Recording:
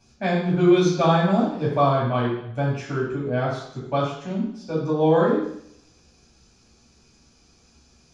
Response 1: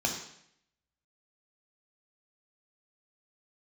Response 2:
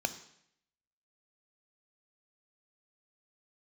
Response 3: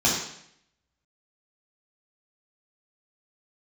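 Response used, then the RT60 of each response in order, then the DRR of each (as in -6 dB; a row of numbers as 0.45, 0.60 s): 3; 0.70, 0.70, 0.70 s; 1.5, 10.5, -4.5 dB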